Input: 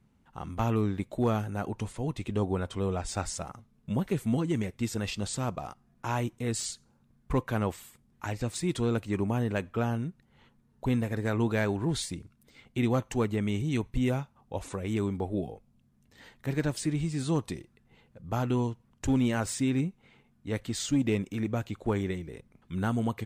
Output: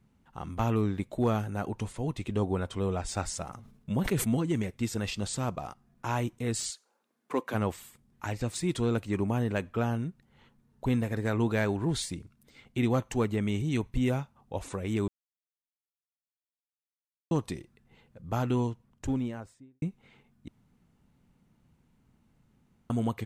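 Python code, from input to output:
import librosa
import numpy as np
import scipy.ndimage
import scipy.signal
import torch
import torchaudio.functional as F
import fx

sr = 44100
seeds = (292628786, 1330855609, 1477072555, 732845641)

y = fx.sustainer(x, sr, db_per_s=70.0, at=(3.45, 4.29))
y = fx.highpass(y, sr, hz=fx.line((6.69, 550.0), (7.53, 210.0)), slope=24, at=(6.69, 7.53), fade=0.02)
y = fx.studio_fade_out(y, sr, start_s=18.63, length_s=1.19)
y = fx.edit(y, sr, fx.silence(start_s=15.08, length_s=2.23),
    fx.room_tone_fill(start_s=20.48, length_s=2.42), tone=tone)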